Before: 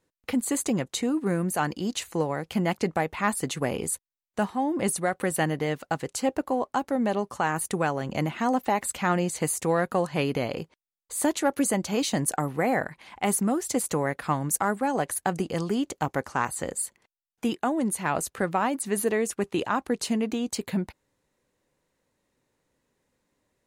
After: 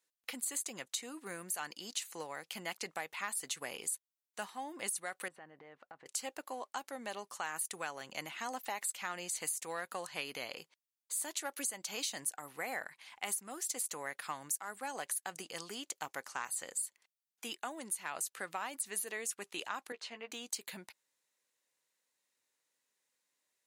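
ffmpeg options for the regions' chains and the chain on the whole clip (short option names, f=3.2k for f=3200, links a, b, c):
-filter_complex "[0:a]asettb=1/sr,asplit=3[a][b][c];[a]atrim=end=5.284[d];[b]atrim=start=5.28:end=6.06,asetpts=PTS-STARTPTS,afade=t=in:d=0.004:c=qsin,afade=t=out:st=0.776:d=0.004:c=qsin,lowpass=1.3k,acompressor=threshold=-33dB:ratio=8:attack=3.2:release=140:knee=1:detection=peak[e];[c]atrim=start=6.056[f];[d][e]acrossfade=d=0.004:c1=hsin:c2=qsin[g];[g][f]acrossfade=d=0.004:c1=qsin:c2=hsin,asettb=1/sr,asplit=3[h][i][j];[h]atrim=end=19.924[k];[i]atrim=start=19.92:end=20.32,asetpts=PTS-STARTPTS,afade=t=in:d=0.004:c=qsin,afade=t=out:st=0.396:d=0.004:c=qsin,highpass=400,lowpass=2.4k,asplit=2[l][m];[m]adelay=13,volume=-6dB[n];[l][n]amix=inputs=2:normalize=0,atrim=end_sample=17640[o];[j]atrim=start=20.316[p];[k][o]acrossfade=d=0.004:c1=hsin:c2=qsin[q];[q][p]acrossfade=d=0.004:c1=qsin:c2=hsin,lowpass=f=3.8k:p=1,aderivative,acompressor=threshold=-39dB:ratio=10,volume=5.5dB"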